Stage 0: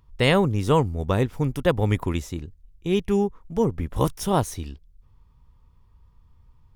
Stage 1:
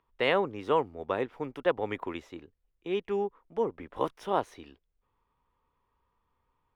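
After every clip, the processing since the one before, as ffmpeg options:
-filter_complex "[0:a]acrossover=split=300 3400:gain=0.0794 1 0.0794[a][b][c];[a][b][c]amix=inputs=3:normalize=0,volume=-4dB"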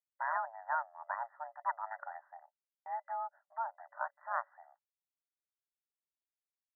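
-af "aeval=exprs='val(0)*sin(2*PI*450*n/s)':c=same,afftfilt=real='re*between(b*sr/4096,570,2000)':imag='im*between(b*sr/4096,570,2000)':win_size=4096:overlap=0.75,agate=range=-33dB:threshold=-58dB:ratio=3:detection=peak,volume=-3dB"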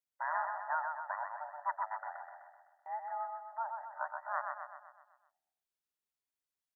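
-af "aecho=1:1:127|254|381|508|635|762|889:0.596|0.31|0.161|0.0838|0.0436|0.0226|0.0118,volume=-1dB"

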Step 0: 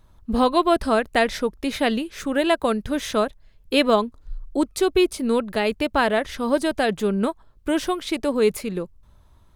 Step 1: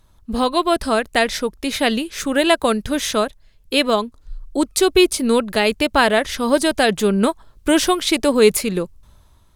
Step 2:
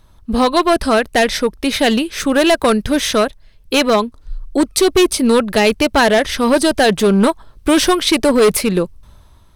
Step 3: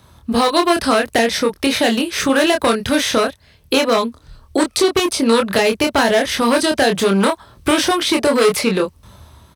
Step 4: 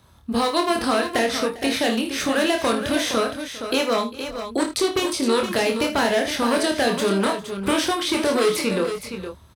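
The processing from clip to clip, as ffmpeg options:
-af "equalizer=f=8.8k:t=o:w=2.9:g=7.5,dynaudnorm=f=140:g=9:m=11.5dB,volume=-1dB"
-filter_complex "[0:a]highshelf=f=6.5k:g=-4,bandreject=f=7k:w=9.2,acrossover=split=7400[a][b];[a]asoftclip=type=hard:threshold=-13.5dB[c];[c][b]amix=inputs=2:normalize=0,volume=6dB"
-filter_complex "[0:a]highpass=f=64:w=0.5412,highpass=f=64:w=1.3066,acrossover=split=520|1200|7100[a][b][c][d];[a]acompressor=threshold=-26dB:ratio=4[e];[b]acompressor=threshold=-27dB:ratio=4[f];[c]acompressor=threshold=-27dB:ratio=4[g];[d]acompressor=threshold=-39dB:ratio=4[h];[e][f][g][h]amix=inputs=4:normalize=0,asplit=2[i][j];[j]adelay=26,volume=-4dB[k];[i][k]amix=inputs=2:normalize=0,volume=5.5dB"
-af "aecho=1:1:54|77|400|466:0.299|0.158|0.106|0.355,volume=-6.5dB"

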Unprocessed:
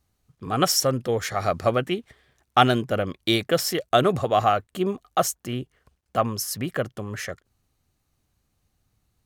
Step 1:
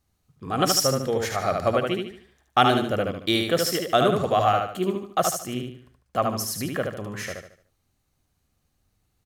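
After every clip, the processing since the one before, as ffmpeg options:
-filter_complex "[0:a]bandreject=f=60:t=h:w=6,bandreject=f=120:t=h:w=6,asplit=2[a][b];[b]aecho=0:1:74|148|222|296|370:0.631|0.233|0.0864|0.032|0.0118[c];[a][c]amix=inputs=2:normalize=0,volume=-1.5dB"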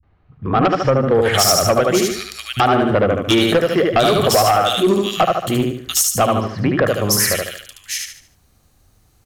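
-filter_complex "[0:a]acrossover=split=180|2600[a][b][c];[b]adelay=30[d];[c]adelay=720[e];[a][d][e]amix=inputs=3:normalize=0,acompressor=threshold=-24dB:ratio=5,aeval=exprs='0.266*sin(PI/2*2.51*val(0)/0.266)':c=same,volume=3.5dB"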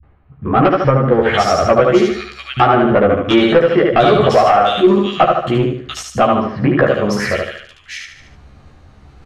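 -filter_complex "[0:a]areverse,acompressor=mode=upward:threshold=-33dB:ratio=2.5,areverse,lowpass=2.6k,asplit=2[a][b];[b]adelay=14,volume=-3dB[c];[a][c]amix=inputs=2:normalize=0,volume=2dB"

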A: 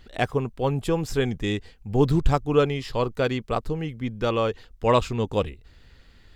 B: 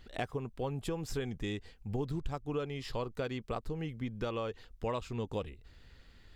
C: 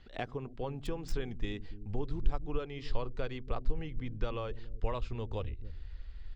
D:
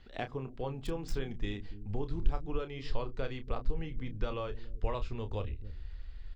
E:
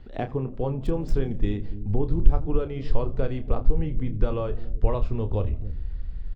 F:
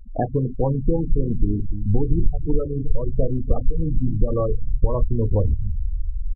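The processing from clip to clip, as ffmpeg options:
-af "acompressor=threshold=-28dB:ratio=5,volume=-5dB"
-filter_complex "[0:a]asubboost=boost=9.5:cutoff=58,acrossover=split=360|6100[a][b][c];[a]aecho=1:1:81.63|285.7:0.282|0.355[d];[c]acrusher=bits=6:mix=0:aa=0.000001[e];[d][b][e]amix=inputs=3:normalize=0,volume=-1.5dB"
-filter_complex "[0:a]asplit=2[a][b];[b]adelay=30,volume=-9.5dB[c];[a][c]amix=inputs=2:normalize=0"
-filter_complex "[0:a]tiltshelf=f=1.1k:g=7.5,asplit=4[a][b][c][d];[b]adelay=83,afreqshift=61,volume=-22.5dB[e];[c]adelay=166,afreqshift=122,volume=-28.9dB[f];[d]adelay=249,afreqshift=183,volume=-35.3dB[g];[a][e][f][g]amix=inputs=4:normalize=0,volume=4.5dB"
-af "acompressor=threshold=-18dB:ratio=6,afftfilt=real='re*gte(hypot(re,im),0.0562)':imag='im*gte(hypot(re,im),0.0562)':win_size=1024:overlap=0.75,bandreject=f=400:w=12,volume=7dB"

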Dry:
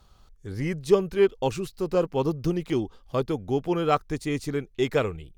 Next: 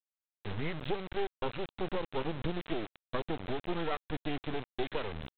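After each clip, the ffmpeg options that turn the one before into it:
-af "acompressor=threshold=-28dB:ratio=16,aresample=8000,acrusher=bits=4:dc=4:mix=0:aa=0.000001,aresample=44100,volume=2dB"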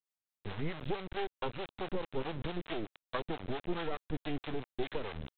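-filter_complex "[0:a]acrossover=split=500[a][b];[a]aeval=exprs='val(0)*(1-0.7/2+0.7/2*cos(2*PI*4.6*n/s))':c=same[c];[b]aeval=exprs='val(0)*(1-0.7/2-0.7/2*cos(2*PI*4.6*n/s))':c=same[d];[c][d]amix=inputs=2:normalize=0,volume=1.5dB"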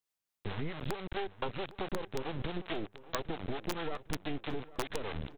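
-filter_complex "[0:a]aeval=exprs='(mod(14.1*val(0)+1,2)-1)/14.1':c=same,acompressor=threshold=-36dB:ratio=6,asplit=2[a][b];[b]adelay=806,lowpass=f=2.7k:p=1,volume=-17.5dB,asplit=2[c][d];[d]adelay=806,lowpass=f=2.7k:p=1,volume=0.46,asplit=2[e][f];[f]adelay=806,lowpass=f=2.7k:p=1,volume=0.46,asplit=2[g][h];[h]adelay=806,lowpass=f=2.7k:p=1,volume=0.46[i];[a][c][e][g][i]amix=inputs=5:normalize=0,volume=4.5dB"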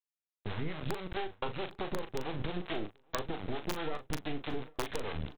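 -filter_complex "[0:a]agate=range=-15dB:threshold=-44dB:ratio=16:detection=peak,asplit=2[a][b];[b]adelay=39,volume=-9dB[c];[a][c]amix=inputs=2:normalize=0"

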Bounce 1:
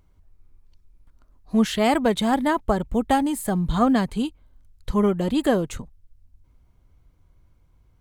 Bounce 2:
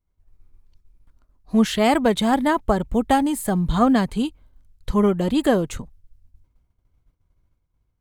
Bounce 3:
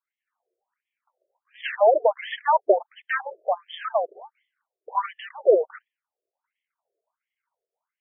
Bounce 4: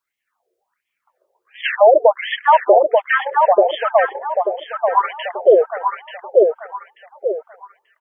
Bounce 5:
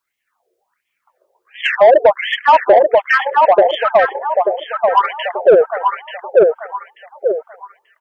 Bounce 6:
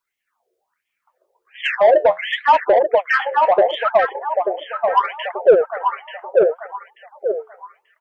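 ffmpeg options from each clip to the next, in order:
-af "agate=range=-33dB:threshold=-47dB:ratio=3:detection=peak,volume=2dB"
-af "afreqshift=-42,aeval=exprs='0.631*(cos(1*acos(clip(val(0)/0.631,-1,1)))-cos(1*PI/2))+0.0141*(cos(8*acos(clip(val(0)/0.631,-1,1)))-cos(8*PI/2))':c=same,afftfilt=real='re*between(b*sr/1024,480*pow(2500/480,0.5+0.5*sin(2*PI*1.4*pts/sr))/1.41,480*pow(2500/480,0.5+0.5*sin(2*PI*1.4*pts/sr))*1.41)':imag='im*between(b*sr/1024,480*pow(2500/480,0.5+0.5*sin(2*PI*1.4*pts/sr))/1.41,480*pow(2500/480,0.5+0.5*sin(2*PI*1.4*pts/sr))*1.41)':win_size=1024:overlap=0.75,volume=5dB"
-filter_complex "[0:a]asplit=2[a][b];[b]adelay=886,lowpass=f=2.2k:p=1,volume=-4dB,asplit=2[c][d];[d]adelay=886,lowpass=f=2.2k:p=1,volume=0.35,asplit=2[e][f];[f]adelay=886,lowpass=f=2.2k:p=1,volume=0.35,asplit=2[g][h];[h]adelay=886,lowpass=f=2.2k:p=1,volume=0.35[i];[a][c][e][g][i]amix=inputs=5:normalize=0,alimiter=level_in=10.5dB:limit=-1dB:release=50:level=0:latency=1,volume=-1dB"
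-af "acontrast=40,volume=-1dB"
-af "flanger=delay=2:depth=9.7:regen=66:speed=0.73:shape=sinusoidal"

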